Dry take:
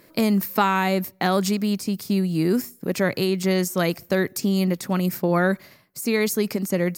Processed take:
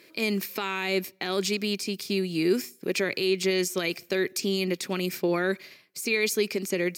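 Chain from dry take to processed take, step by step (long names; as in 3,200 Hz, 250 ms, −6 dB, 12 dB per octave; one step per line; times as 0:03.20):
meter weighting curve D
brickwall limiter −11 dBFS, peak gain reduction 10.5 dB
hollow resonant body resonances 380/2,400 Hz, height 9 dB, ringing for 25 ms
level −7 dB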